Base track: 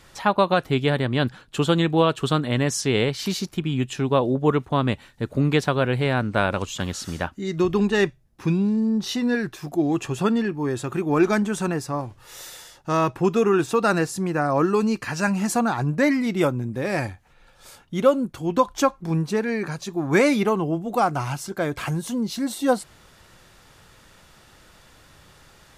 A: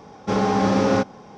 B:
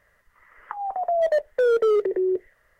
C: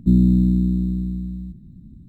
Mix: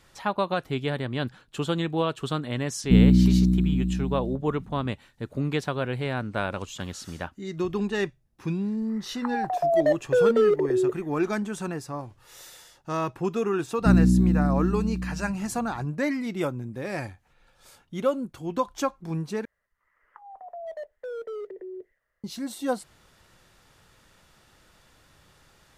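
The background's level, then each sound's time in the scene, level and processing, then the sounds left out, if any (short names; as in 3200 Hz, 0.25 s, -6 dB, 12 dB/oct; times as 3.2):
base track -7 dB
2.84 add C -1.5 dB
8.54 add B -0.5 dB, fades 0.10 s
13.79 add C -3.5 dB
19.45 replace with B -16 dB
not used: A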